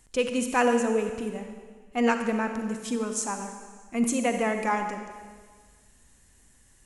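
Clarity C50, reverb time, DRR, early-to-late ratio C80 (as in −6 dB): 6.5 dB, 1.6 s, 6.0 dB, 7.5 dB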